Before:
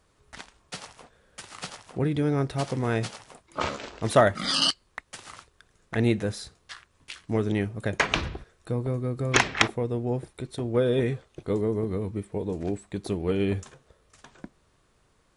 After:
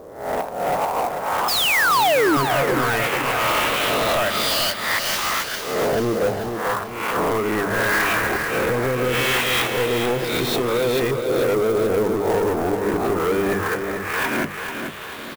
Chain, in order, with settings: reverse spectral sustain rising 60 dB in 0.52 s; hum notches 50/100/150/200 Hz; compression, threshold -38 dBFS, peak gain reduction 24 dB; LFO low-pass saw up 0.18 Hz 510–7600 Hz; painted sound fall, 1.48–2.37 s, 270–5300 Hz -28 dBFS; overdrive pedal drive 30 dB, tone 3.4 kHz, clips at -19.5 dBFS; feedback delay 439 ms, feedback 45%, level -7 dB; sampling jitter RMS 0.025 ms; trim +7 dB

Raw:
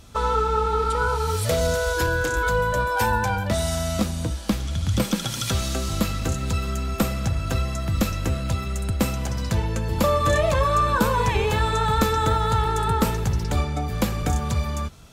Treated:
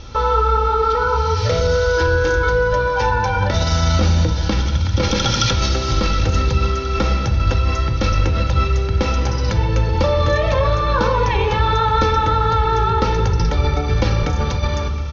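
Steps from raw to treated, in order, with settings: steep low-pass 6.2 kHz 96 dB/octave; comb 2.2 ms, depth 50%; in parallel at +1 dB: compressor with a negative ratio -26 dBFS, ratio -0.5; on the sum: two-band feedback delay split 960 Hz, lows 175 ms, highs 718 ms, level -16 dB; on a send at -6 dB: reverberation RT60 1.3 s, pre-delay 4 ms

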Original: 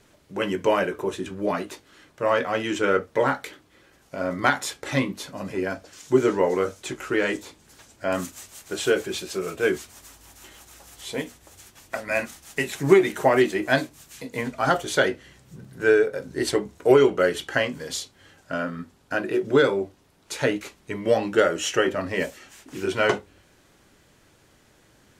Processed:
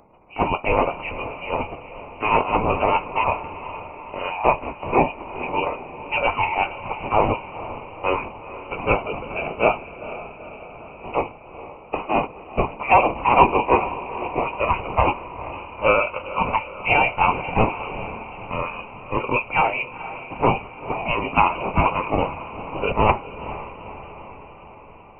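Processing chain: spectral gate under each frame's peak -15 dB weak; FFT filter 250 Hz 0 dB, 410 Hz +9 dB, 600 Hz +5 dB, 1.2 kHz -18 dB, 1.9 kHz +14 dB; in parallel at -3.5 dB: saturation -15.5 dBFS, distortion -12 dB; on the sum: echo that smears into a reverb 469 ms, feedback 60%, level -13.5 dB; frequency inversion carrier 2.9 kHz; trim +1.5 dB

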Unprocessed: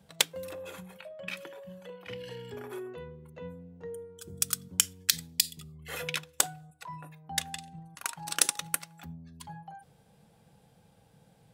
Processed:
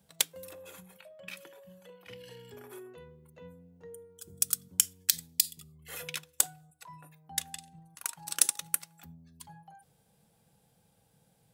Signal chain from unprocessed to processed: treble shelf 6.2 kHz +12 dB; trim -7.5 dB

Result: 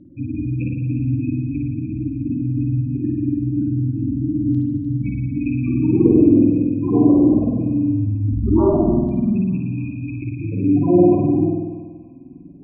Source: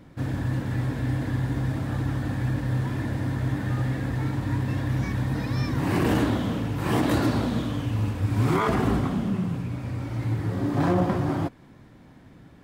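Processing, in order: rattle on loud lows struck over -33 dBFS, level -20 dBFS; 8.30–9.16 s: frequency shift -51 Hz; spectral gate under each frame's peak -10 dB strong; peaking EQ 350 Hz +12.5 dB 1.6 oct; LFO low-pass saw down 0.22 Hz 550–3800 Hz; treble shelf 3.4 kHz -6.5 dB; feedback echo behind a high-pass 301 ms, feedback 52%, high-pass 1.6 kHz, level -11.5 dB; spring tank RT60 1.3 s, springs 48 ms, chirp 30 ms, DRR -1.5 dB; trim -3 dB

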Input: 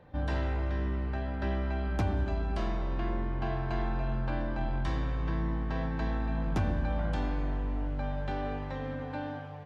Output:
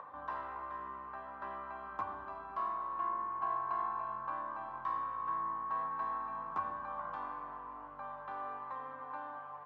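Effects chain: upward compressor, threshold -33 dBFS; band-pass filter 1.1 kHz, Q 13; trim +13 dB

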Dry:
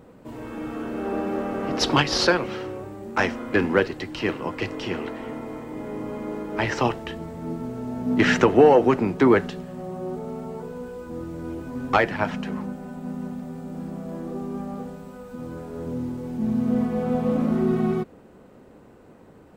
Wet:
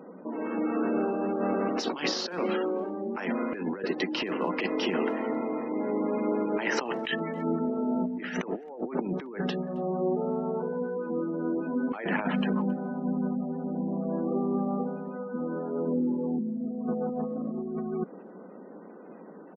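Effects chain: elliptic high-pass 180 Hz, stop band 40 dB; spectral gate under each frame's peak -25 dB strong; 7.03–7.59 s: high-order bell 3.2 kHz +15.5 dB 2.4 oct; compressor with a negative ratio -30 dBFS, ratio -1; speakerphone echo 270 ms, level -25 dB

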